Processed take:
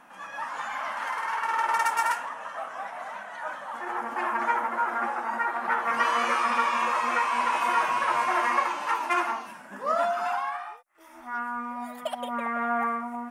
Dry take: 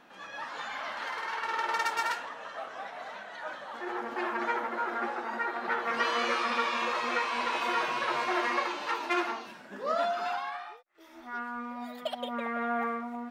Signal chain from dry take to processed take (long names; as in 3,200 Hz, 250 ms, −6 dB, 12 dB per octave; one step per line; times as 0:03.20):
graphic EQ with 15 bands 100 Hz −8 dB, 400 Hz −9 dB, 1,000 Hz +5 dB, 4,000 Hz −11 dB, 10,000 Hz +10 dB
level +3.5 dB